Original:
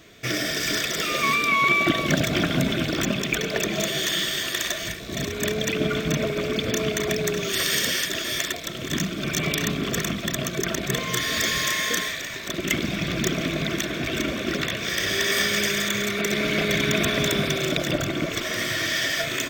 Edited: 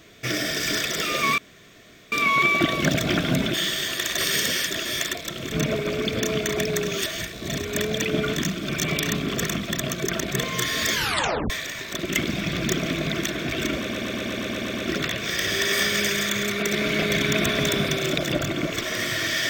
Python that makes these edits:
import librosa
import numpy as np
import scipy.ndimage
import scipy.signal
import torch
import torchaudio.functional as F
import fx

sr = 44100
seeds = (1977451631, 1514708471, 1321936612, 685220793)

y = fx.edit(x, sr, fx.insert_room_tone(at_s=1.38, length_s=0.74),
    fx.cut(start_s=2.8, length_s=1.29),
    fx.swap(start_s=4.73, length_s=1.3, other_s=7.57, other_length_s=1.34),
    fx.tape_stop(start_s=11.48, length_s=0.57),
    fx.stutter(start_s=14.34, slice_s=0.12, count=9), tone=tone)